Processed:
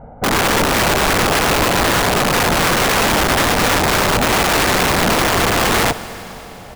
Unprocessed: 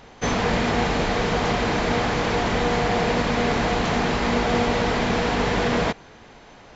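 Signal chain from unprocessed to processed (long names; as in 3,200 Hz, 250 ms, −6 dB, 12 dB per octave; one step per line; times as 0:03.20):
Bessel low-pass filter 740 Hz, order 4
parametric band 330 Hz +3 dB 2.2 octaves
comb filter 1.4 ms, depth 82%
wrap-around overflow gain 17.5 dB
four-comb reverb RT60 4 s, DRR 13 dB
level +7.5 dB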